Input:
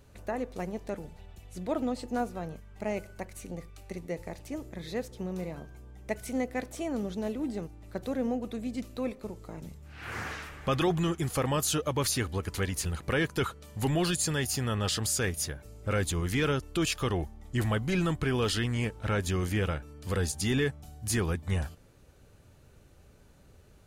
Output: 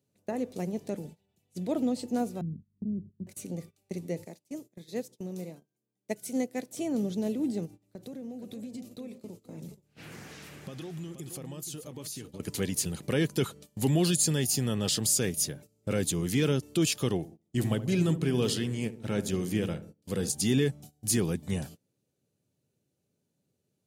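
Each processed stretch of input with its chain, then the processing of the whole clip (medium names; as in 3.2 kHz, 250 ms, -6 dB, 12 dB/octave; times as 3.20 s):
2.41–3.27 s: inverse Chebyshev low-pass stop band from 940 Hz, stop band 60 dB + bass shelf 97 Hz +9.5 dB
4.24–6.77 s: high-pass 130 Hz + tone controls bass -2 dB, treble +4 dB + upward expansion, over -51 dBFS
7.65–12.40 s: compression 8:1, threshold -40 dBFS + delay 476 ms -9 dB
17.17–20.30 s: filtered feedback delay 72 ms, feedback 69%, low-pass 970 Hz, level -9.5 dB + upward expansion, over -43 dBFS
whole clip: high-pass 130 Hz 24 dB/octave; gate -48 dBFS, range -20 dB; peaking EQ 1.3 kHz -14 dB 2.1 oct; trim +5.5 dB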